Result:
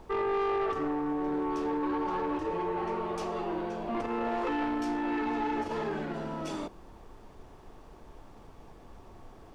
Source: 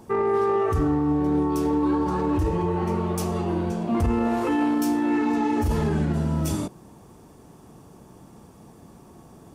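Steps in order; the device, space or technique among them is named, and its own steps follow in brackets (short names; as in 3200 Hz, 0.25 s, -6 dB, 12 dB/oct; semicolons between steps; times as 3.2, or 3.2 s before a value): aircraft cabin announcement (BPF 390–3800 Hz; soft clip -23.5 dBFS, distortion -15 dB; brown noise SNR 17 dB); gain -1.5 dB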